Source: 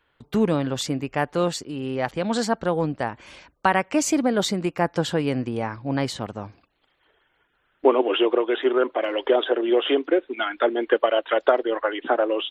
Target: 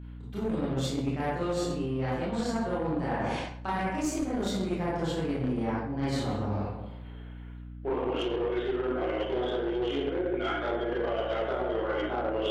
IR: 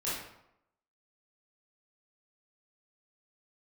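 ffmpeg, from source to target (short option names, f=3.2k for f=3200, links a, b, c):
-filter_complex "[0:a]lowshelf=f=450:g=5[a];[1:a]atrim=start_sample=2205,asetrate=34839,aresample=44100[b];[a][b]afir=irnorm=-1:irlink=0,acrossover=split=160|4700[c][d][e];[d]alimiter=limit=-6dB:level=0:latency=1:release=117[f];[c][f][e]amix=inputs=3:normalize=0,aeval=exprs='0.75*(cos(1*acos(clip(val(0)/0.75,-1,1)))-cos(1*PI/2))+0.15*(cos(4*acos(clip(val(0)/0.75,-1,1)))-cos(4*PI/2))+0.0944*(cos(6*acos(clip(val(0)/0.75,-1,1)))-cos(6*PI/2))':c=same,areverse,acompressor=threshold=-28dB:ratio=8,areverse,aeval=exprs='val(0)+0.00891*(sin(2*PI*60*n/s)+sin(2*PI*2*60*n/s)/2+sin(2*PI*3*60*n/s)/3+sin(2*PI*4*60*n/s)/4+sin(2*PI*5*60*n/s)/5)':c=same"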